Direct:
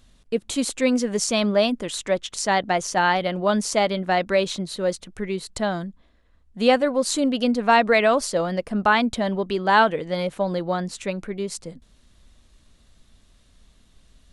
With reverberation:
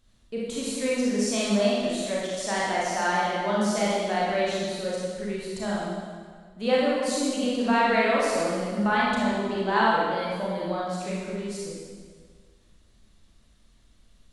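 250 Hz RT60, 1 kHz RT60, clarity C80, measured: 1.8 s, 1.7 s, 0.0 dB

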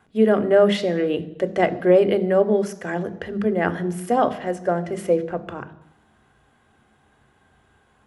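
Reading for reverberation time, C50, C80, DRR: 0.85 s, 16.0 dB, 18.5 dB, 11.0 dB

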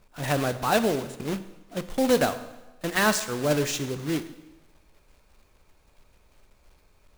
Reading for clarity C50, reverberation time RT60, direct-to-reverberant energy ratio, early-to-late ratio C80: 13.5 dB, 1.1 s, 11.0 dB, 15.0 dB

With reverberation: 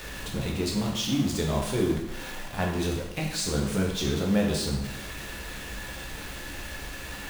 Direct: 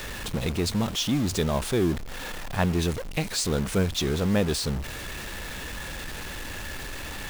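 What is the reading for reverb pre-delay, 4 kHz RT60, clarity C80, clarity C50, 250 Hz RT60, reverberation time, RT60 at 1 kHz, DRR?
5 ms, 0.80 s, 7.0 dB, 4.5 dB, 0.80 s, 0.85 s, 0.85 s, −1.5 dB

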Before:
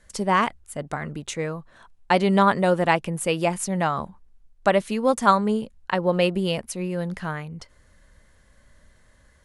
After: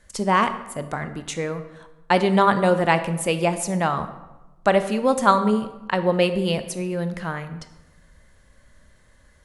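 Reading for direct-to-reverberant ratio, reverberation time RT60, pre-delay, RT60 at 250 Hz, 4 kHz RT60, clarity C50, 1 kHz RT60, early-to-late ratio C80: 10.0 dB, 1.1 s, 20 ms, 1.2 s, 0.70 s, 11.5 dB, 1.0 s, 13.5 dB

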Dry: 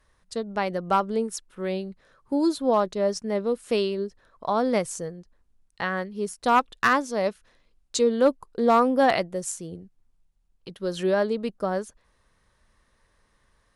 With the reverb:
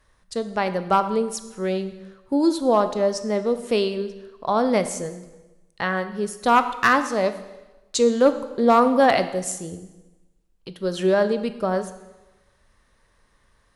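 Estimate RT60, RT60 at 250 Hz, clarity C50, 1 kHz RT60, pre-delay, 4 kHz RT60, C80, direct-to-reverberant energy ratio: 1.1 s, 1.1 s, 12.0 dB, 1.1 s, 10 ms, 1.0 s, 13.5 dB, 10.0 dB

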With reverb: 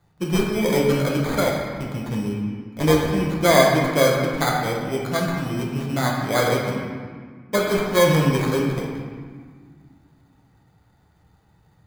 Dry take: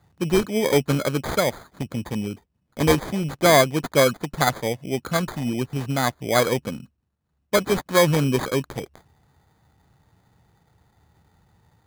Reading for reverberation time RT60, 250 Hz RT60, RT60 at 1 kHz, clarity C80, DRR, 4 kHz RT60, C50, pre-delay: 1.7 s, 2.6 s, 1.7 s, 2.5 dB, −2.5 dB, 1.2 s, 1.0 dB, 6 ms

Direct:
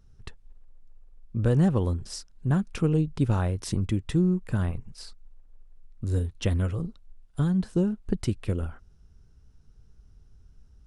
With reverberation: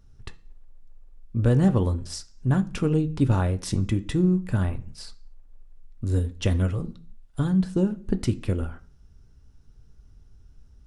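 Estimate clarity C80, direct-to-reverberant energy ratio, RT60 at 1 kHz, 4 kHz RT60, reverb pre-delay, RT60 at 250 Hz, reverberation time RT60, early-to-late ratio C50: 23.0 dB, 8.0 dB, 0.40 s, 0.45 s, 3 ms, can't be measured, 0.45 s, 19.0 dB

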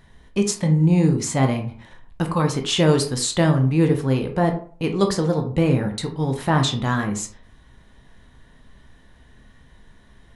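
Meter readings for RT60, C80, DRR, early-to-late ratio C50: 0.45 s, 14.5 dB, 4.5 dB, 10.0 dB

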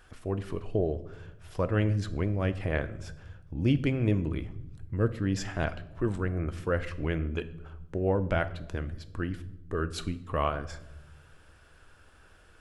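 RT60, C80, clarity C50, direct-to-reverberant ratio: 0.95 s, 18.5 dB, 15.5 dB, 10.5 dB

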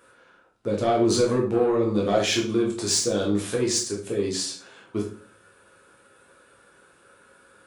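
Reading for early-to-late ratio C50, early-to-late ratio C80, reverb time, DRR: 7.0 dB, 12.0 dB, 0.45 s, −3.0 dB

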